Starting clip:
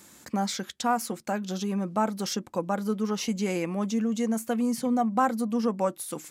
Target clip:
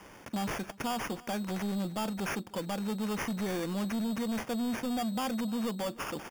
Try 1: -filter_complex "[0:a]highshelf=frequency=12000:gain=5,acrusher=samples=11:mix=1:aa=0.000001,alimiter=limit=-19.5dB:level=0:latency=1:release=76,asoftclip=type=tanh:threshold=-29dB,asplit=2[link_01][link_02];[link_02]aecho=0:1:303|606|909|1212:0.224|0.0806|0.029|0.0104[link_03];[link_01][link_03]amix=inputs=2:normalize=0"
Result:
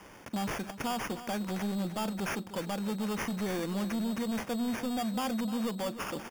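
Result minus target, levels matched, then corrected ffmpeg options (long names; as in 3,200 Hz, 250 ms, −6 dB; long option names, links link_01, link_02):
echo-to-direct +9 dB
-filter_complex "[0:a]highshelf=frequency=12000:gain=5,acrusher=samples=11:mix=1:aa=0.000001,alimiter=limit=-19.5dB:level=0:latency=1:release=76,asoftclip=type=tanh:threshold=-29dB,asplit=2[link_01][link_02];[link_02]aecho=0:1:303|606|909:0.0794|0.0286|0.0103[link_03];[link_01][link_03]amix=inputs=2:normalize=0"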